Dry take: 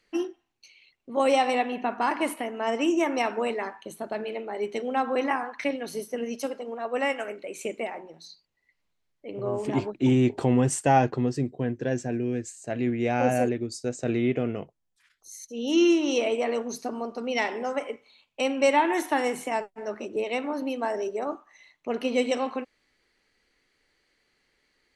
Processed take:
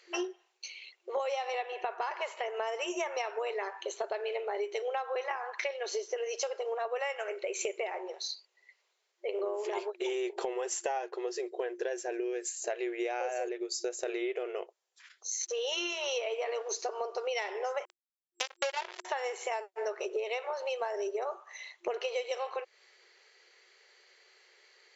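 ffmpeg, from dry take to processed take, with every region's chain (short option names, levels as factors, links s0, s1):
-filter_complex "[0:a]asettb=1/sr,asplit=3[s0][s1][s2];[s0]atrim=end=15.414[s3];[s1]atrim=start=15.41:end=16.69,asetpts=PTS-STARTPTS,afade=t=in:d=0.004:c=qsin,afade=t=out:st=1.276:d=0.004:c=qsin,acompressor=mode=upward:threshold=0.0282:ratio=2.5:attack=3.2:release=140:knee=2.83:detection=peak,aeval=exprs='sgn(val(0))*max(abs(val(0))-0.00141,0)':c=same,highpass=360,lowpass=5700[s4];[s2]atrim=start=16.686[s5];[s3][s4]acrossfade=d=0.004:c1=hsin:c2=qsin[s6];[s6][s5]acrossfade=d=0.004:c1=qsin:c2=hsin,asettb=1/sr,asplit=3[s7][s8][s9];[s7]atrim=end=17.854[s10];[s8]atrim=start=17.85:end=19.05,asetpts=PTS-STARTPTS,afade=t=in:d=0.004:c=qsin,afade=t=out:st=1.196:d=0.004:c=qsin,asplit=2[s11][s12];[s12]adelay=18,volume=0.398[s13];[s11][s13]amix=inputs=2:normalize=0,atrim=end_sample=52920,acrusher=bits=2:mix=0:aa=0.5[s14];[s9]atrim=start=19.046[s15];[s10][s14]acrossfade=d=0.004:c1=hsin:c2=qsin[s16];[s16][s15]acrossfade=d=0.004:c1=qsin:c2=hsin,afftfilt=real='re*between(b*sr/4096,350,7600)':imag='im*between(b*sr/4096,350,7600)':win_size=4096:overlap=0.75,highshelf=f=5700:g=5.5,acompressor=threshold=0.0112:ratio=12,volume=2.51"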